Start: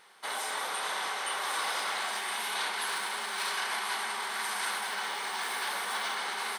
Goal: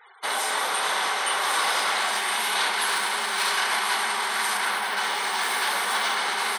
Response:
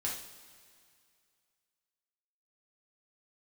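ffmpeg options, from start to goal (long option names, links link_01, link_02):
-filter_complex "[0:a]asettb=1/sr,asplit=3[link_01][link_02][link_03];[link_01]atrim=end=4.574[link_04];[link_02]atrim=start=4.57:end=4.97,asetpts=PTS-STARTPTS,afade=type=in:duration=0.004:curve=qsin,afade=type=out:start_time=0.396:duration=0.004:curve=qsin,equalizer=frequency=7500:width_type=o:width=1.8:gain=-6[link_05];[link_03]atrim=start=4.966[link_06];[link_04][link_05]acrossfade=duration=0.004:curve1=hsin:curve2=qsin[link_07];[link_07][link_06]acrossfade=duration=0.004:curve1=qsin:curve2=hsin,afftfilt=real='re*gte(hypot(re,im),0.002)':imag='im*gte(hypot(re,im),0.002)':win_size=1024:overlap=0.75,volume=8.5dB"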